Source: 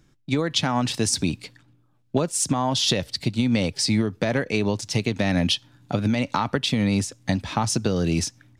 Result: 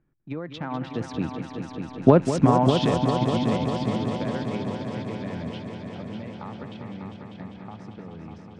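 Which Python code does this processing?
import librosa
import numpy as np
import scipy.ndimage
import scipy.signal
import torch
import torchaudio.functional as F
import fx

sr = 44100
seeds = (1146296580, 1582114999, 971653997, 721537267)

p1 = fx.wiener(x, sr, points=9)
p2 = fx.doppler_pass(p1, sr, speed_mps=13, closest_m=3.1, pass_at_s=2.2)
p3 = scipy.signal.sosfilt(scipy.signal.butter(2, 2100.0, 'lowpass', fs=sr, output='sos'), p2)
p4 = fx.hum_notches(p3, sr, base_hz=50, count=2)
p5 = p4 + fx.echo_heads(p4, sr, ms=199, heads='all three', feedback_pct=72, wet_db=-10.5, dry=0)
y = p5 * librosa.db_to_amplitude(8.5)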